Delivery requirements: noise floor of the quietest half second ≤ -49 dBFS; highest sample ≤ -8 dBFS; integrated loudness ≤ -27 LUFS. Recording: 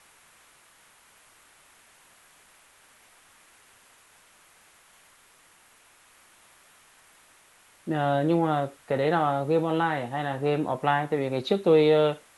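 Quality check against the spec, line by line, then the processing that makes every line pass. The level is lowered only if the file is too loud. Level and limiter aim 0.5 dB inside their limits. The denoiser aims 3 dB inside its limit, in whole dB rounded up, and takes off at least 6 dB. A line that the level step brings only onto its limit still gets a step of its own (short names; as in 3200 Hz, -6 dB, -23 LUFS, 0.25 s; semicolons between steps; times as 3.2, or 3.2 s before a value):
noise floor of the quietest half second -58 dBFS: OK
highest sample -9.0 dBFS: OK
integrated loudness -25.0 LUFS: fail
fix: gain -2.5 dB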